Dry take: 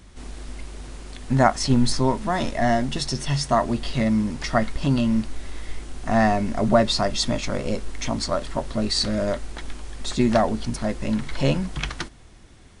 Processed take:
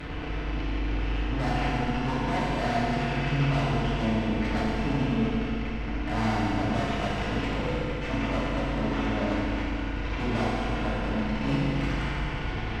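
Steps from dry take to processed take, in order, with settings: delta modulation 16 kbps, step -26 dBFS; tube stage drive 29 dB, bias 0.65; FDN reverb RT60 2.8 s, low-frequency decay 1.2×, high-frequency decay 0.95×, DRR -8 dB; gain -4 dB

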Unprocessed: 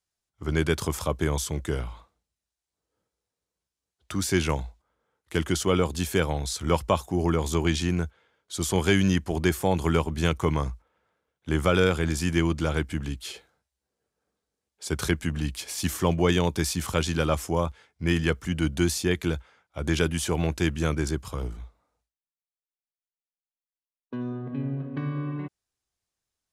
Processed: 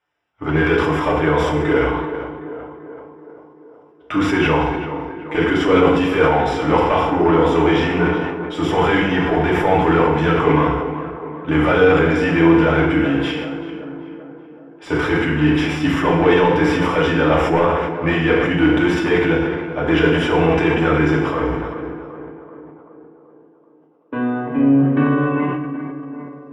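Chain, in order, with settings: overdrive pedal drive 26 dB, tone 1800 Hz, clips at -7.5 dBFS; polynomial smoothing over 25 samples; on a send: tape echo 0.383 s, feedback 65%, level -9 dB, low-pass 1600 Hz; on the sum: FDN reverb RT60 0.89 s, low-frequency decay 0.9×, high-frequency decay 0.9×, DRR -3.5 dB; sustainer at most 35 dB/s; gain -3 dB

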